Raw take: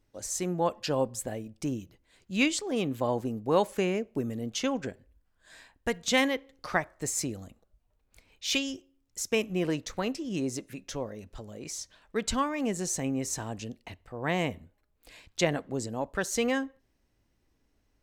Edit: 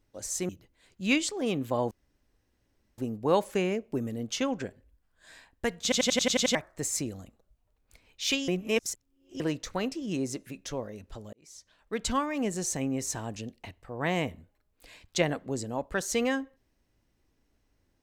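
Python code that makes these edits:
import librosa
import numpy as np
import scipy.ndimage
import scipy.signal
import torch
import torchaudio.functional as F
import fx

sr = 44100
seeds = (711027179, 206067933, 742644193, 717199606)

y = fx.edit(x, sr, fx.cut(start_s=0.49, length_s=1.3),
    fx.insert_room_tone(at_s=3.21, length_s=1.07),
    fx.stutter_over(start_s=6.06, slice_s=0.09, count=8),
    fx.reverse_span(start_s=8.71, length_s=0.92),
    fx.fade_in_span(start_s=11.56, length_s=0.8), tone=tone)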